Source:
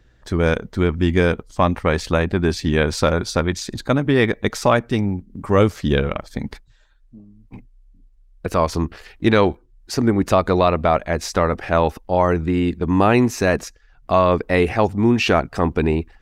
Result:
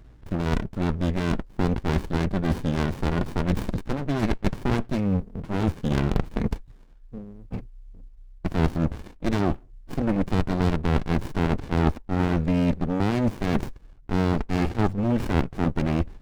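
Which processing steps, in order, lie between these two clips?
median filter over 3 samples; reverse; compressor 6:1, threshold -25 dBFS, peak gain reduction 14.5 dB; reverse; running maximum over 65 samples; gain +7 dB

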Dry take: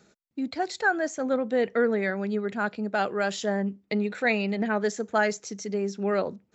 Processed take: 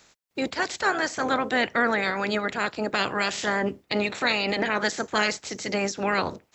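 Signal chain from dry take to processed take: spectral limiter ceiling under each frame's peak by 23 dB; in parallel at -2 dB: limiter -19.5 dBFS, peak gain reduction 10.5 dB; on the sum: gain -2 dB

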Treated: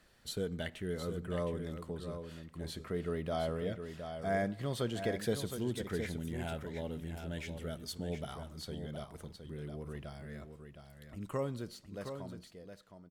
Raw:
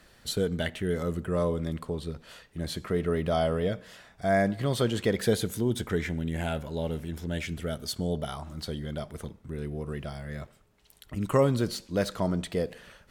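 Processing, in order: ending faded out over 2.82 s; echo 0.715 s -8 dB; gain -9 dB

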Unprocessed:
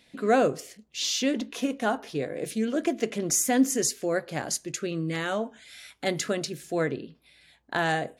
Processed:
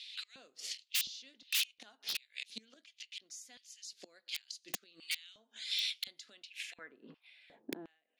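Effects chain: flipped gate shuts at -21 dBFS, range -28 dB; band-pass sweep 4200 Hz -> 230 Hz, 6.26–7.97; wrapped overs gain 39.5 dB; LFO high-pass square 1.4 Hz 220–2700 Hz; gain +12.5 dB

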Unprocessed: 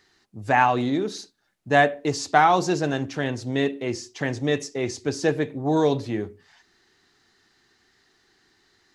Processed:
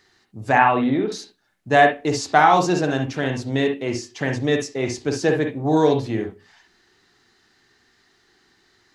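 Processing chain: 0.58–1.12 LPF 3200 Hz 24 dB/oct; on a send: reverb, pre-delay 44 ms, DRR 4.5 dB; on the sum: gain +2 dB

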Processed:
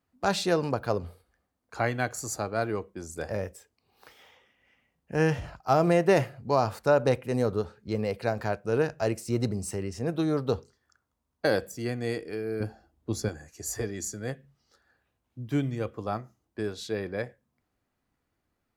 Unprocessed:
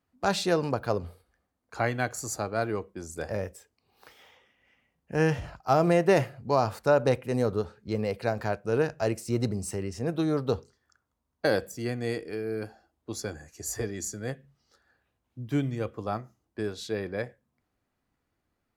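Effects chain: 12.6–13.29 low shelf 290 Hz +11 dB

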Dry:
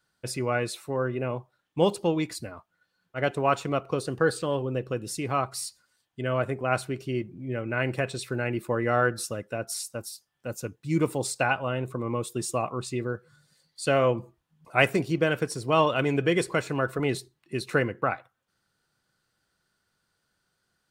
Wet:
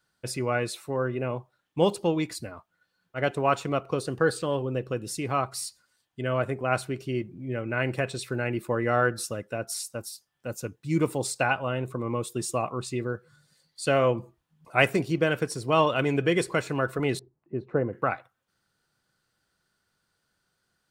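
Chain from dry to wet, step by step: 17.19–17.93 Chebyshev low-pass 730 Hz, order 2

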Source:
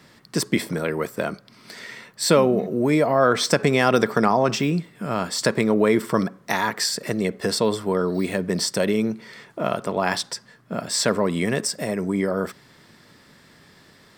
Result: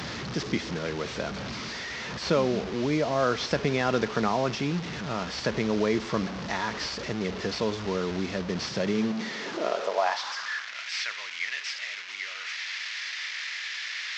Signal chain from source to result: delta modulation 32 kbps, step -22 dBFS; high-pass sweep 60 Hz -> 2100 Hz, 8.46–10.76; gain -7.5 dB

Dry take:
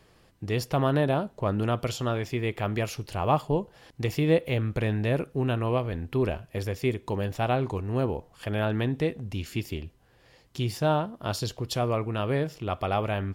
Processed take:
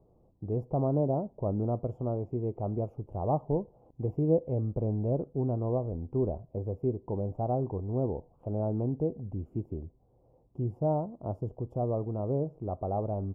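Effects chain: inverse Chebyshev low-pass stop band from 1600 Hz, stop band 40 dB; gain -3 dB

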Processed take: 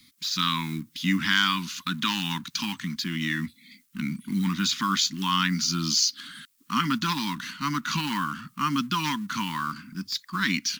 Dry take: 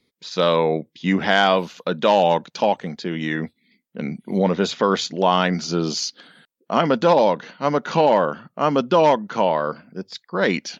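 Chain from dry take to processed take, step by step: G.711 law mismatch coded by mu; elliptic band-stop 280–1100 Hz, stop band 50 dB; high shelf 3700 Hz +10.5 dB; in parallel at 0 dB: compressor, threshold -29 dBFS, peak gain reduction 15.5 dB; on the sum: gain -6 dB

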